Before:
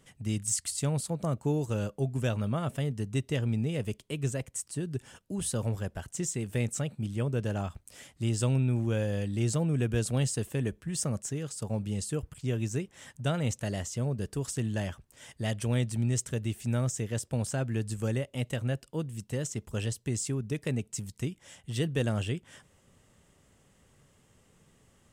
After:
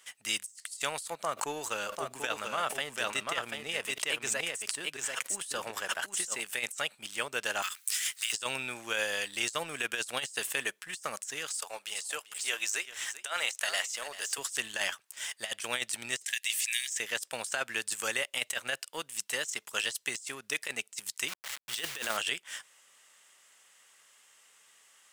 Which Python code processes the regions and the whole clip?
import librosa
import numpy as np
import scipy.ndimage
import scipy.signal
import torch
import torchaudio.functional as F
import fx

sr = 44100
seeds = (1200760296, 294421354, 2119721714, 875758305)

y = fx.chain(x, sr, fx.high_shelf(hz=2600.0, db=-7.5),
    fx.echo_single(ms=740, db=-5.0),
    fx.sustainer(db_per_s=54.0), at=(1.22, 6.4))
y = fx.chain(y, sr, fx.law_mismatch(coded='mu'),
    fx.highpass(hz=1300.0, slope=24),
    fx.high_shelf(hz=6800.0, db=7.5), at=(7.62, 8.33))
y = fx.chain(y, sr, fx.highpass(hz=520.0, slope=12),
    fx.echo_single(ms=391, db=-13.0), at=(11.56, 14.38))
y = fx.chain(y, sr, fx.brickwall_highpass(low_hz=1600.0),
    fx.band_squash(depth_pct=100), at=(16.24, 17.0))
y = fx.chain(y, sr, fx.delta_hold(step_db=-43.0),
    fx.sustainer(db_per_s=87.0), at=(21.28, 22.17))
y = scipy.signal.sosfilt(scipy.signal.butter(2, 1400.0, 'highpass', fs=sr, output='sos'), y)
y = fx.leveller(y, sr, passes=1)
y = fx.over_compress(y, sr, threshold_db=-40.0, ratio=-0.5)
y = F.gain(torch.from_numpy(y), 7.5).numpy()